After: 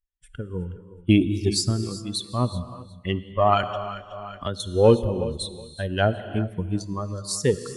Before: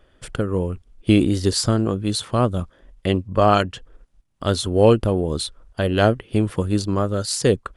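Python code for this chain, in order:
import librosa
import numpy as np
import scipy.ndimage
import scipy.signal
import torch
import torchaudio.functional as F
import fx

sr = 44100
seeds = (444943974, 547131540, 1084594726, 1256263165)

p1 = fx.bin_expand(x, sr, power=2.0)
p2 = fx.rev_gated(p1, sr, seeds[0], gate_ms=420, shape='flat', drr_db=11.5)
p3 = fx.wow_flutter(p2, sr, seeds[1], rate_hz=2.1, depth_cents=16.0)
p4 = p3 + fx.echo_feedback(p3, sr, ms=369, feedback_pct=21, wet_db=-17, dry=0)
p5 = fx.cheby_harmonics(p4, sr, harmonics=(4,), levels_db=(-27,), full_scale_db=2.0)
y = fx.band_squash(p5, sr, depth_pct=100, at=(3.63, 4.6))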